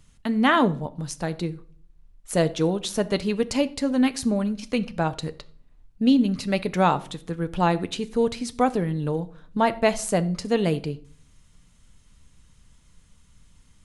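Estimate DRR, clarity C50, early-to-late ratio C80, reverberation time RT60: 12.0 dB, 18.5 dB, 22.5 dB, 0.50 s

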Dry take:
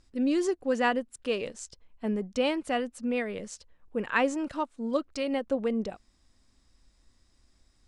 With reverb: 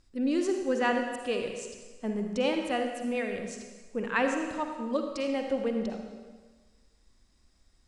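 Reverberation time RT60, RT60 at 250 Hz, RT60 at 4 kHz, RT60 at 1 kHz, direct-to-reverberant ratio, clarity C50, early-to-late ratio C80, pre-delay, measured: 1.4 s, 1.5 s, 1.3 s, 1.4 s, 3.5 dB, 4.0 dB, 6.0 dB, 39 ms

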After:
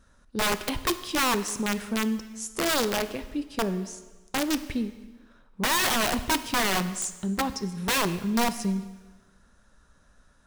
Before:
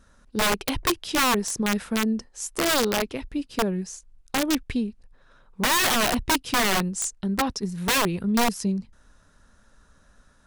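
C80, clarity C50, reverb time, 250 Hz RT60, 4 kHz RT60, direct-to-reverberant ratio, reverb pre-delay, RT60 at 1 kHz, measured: 15.0 dB, 13.5 dB, 1.3 s, 1.3 s, 1.2 s, 11.0 dB, 5 ms, 1.3 s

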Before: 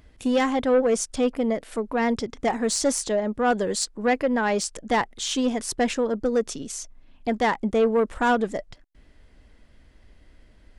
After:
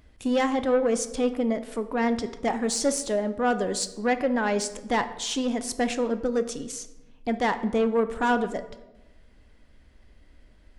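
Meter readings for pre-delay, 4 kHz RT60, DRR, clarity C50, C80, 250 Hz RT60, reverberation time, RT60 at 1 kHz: 3 ms, 0.65 s, 9.5 dB, 13.0 dB, 15.5 dB, 1.3 s, 1.0 s, 0.95 s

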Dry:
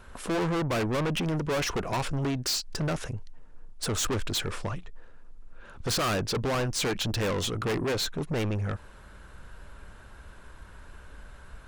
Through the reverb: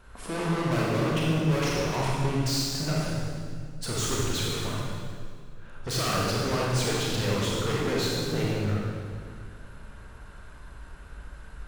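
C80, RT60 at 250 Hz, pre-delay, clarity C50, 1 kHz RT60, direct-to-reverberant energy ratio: −0.5 dB, 2.5 s, 26 ms, −3.0 dB, 1.9 s, −5.0 dB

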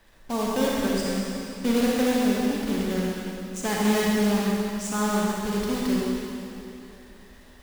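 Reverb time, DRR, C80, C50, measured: 2.9 s, −4.5 dB, −1.5 dB, −3.5 dB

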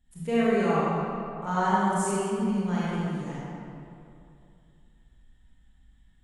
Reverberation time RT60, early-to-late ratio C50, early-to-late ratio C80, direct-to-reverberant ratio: 2.6 s, −5.5 dB, −3.5 dB, −9.0 dB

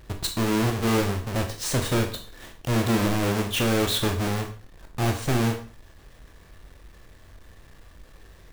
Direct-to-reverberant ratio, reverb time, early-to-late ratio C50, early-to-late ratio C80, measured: 3.5 dB, 0.40 s, 9.5 dB, 13.0 dB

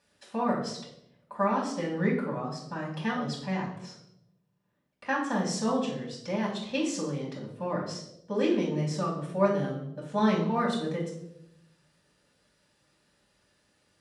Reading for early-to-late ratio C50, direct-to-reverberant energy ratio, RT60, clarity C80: 5.5 dB, −4.0 dB, 0.80 s, 9.0 dB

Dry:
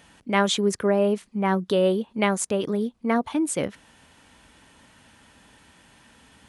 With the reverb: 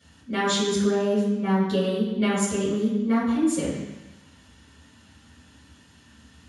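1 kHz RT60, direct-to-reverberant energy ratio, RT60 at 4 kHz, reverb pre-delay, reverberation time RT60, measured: 1.1 s, −13.5 dB, 1.1 s, 3 ms, 1.0 s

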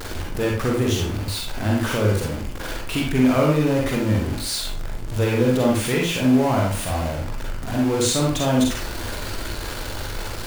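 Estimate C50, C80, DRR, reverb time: 1.0 dB, 7.5 dB, −2.0 dB, 0.50 s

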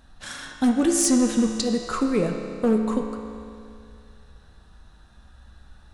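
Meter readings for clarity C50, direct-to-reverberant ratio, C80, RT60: 4.0 dB, 2.5 dB, 5.0 dB, 2.5 s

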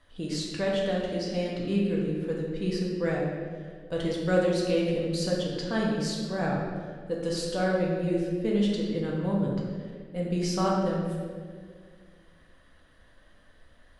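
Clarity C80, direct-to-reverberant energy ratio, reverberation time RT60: 2.5 dB, −3.5 dB, 1.9 s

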